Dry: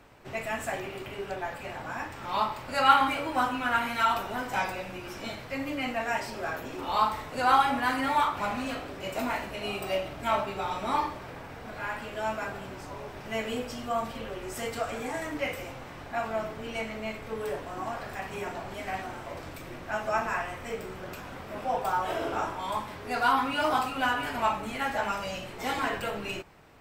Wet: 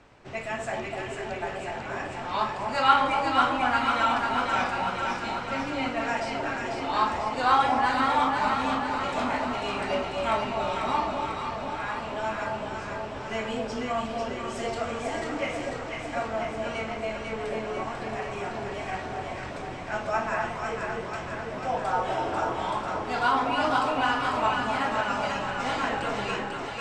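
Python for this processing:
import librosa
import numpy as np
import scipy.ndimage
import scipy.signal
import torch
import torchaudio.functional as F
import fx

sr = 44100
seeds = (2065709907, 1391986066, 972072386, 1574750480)

y = scipy.signal.sosfilt(scipy.signal.butter(4, 7800.0, 'lowpass', fs=sr, output='sos'), x)
y = fx.echo_alternate(y, sr, ms=247, hz=940.0, feedback_pct=81, wet_db=-2.0)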